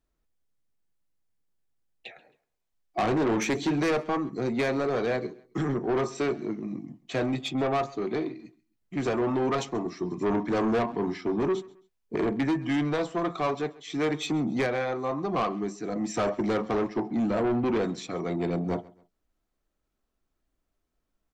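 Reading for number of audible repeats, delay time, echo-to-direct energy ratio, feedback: 2, 134 ms, −21.5 dB, 32%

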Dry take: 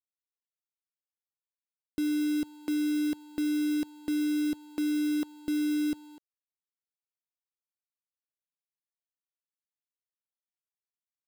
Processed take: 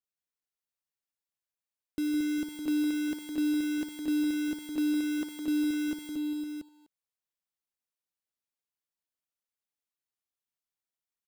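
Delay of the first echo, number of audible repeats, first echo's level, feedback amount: 160 ms, 5, −8.0 dB, repeats not evenly spaced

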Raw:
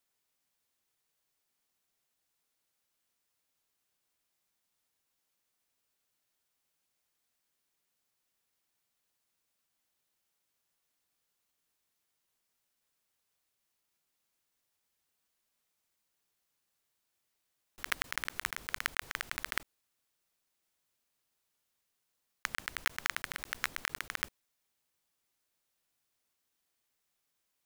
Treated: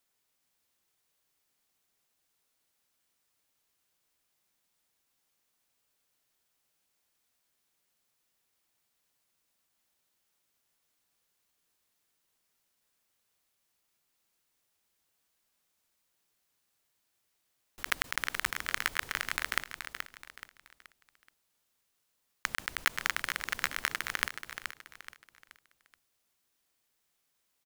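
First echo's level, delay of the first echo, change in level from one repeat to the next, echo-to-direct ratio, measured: −8.0 dB, 427 ms, −8.5 dB, −7.5 dB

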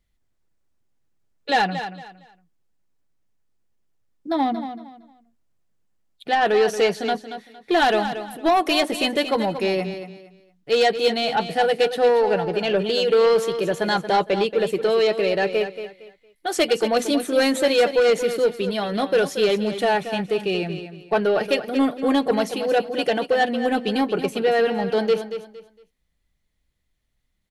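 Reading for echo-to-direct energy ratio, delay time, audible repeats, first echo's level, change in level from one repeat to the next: −10.0 dB, 230 ms, 3, −10.5 dB, −11.5 dB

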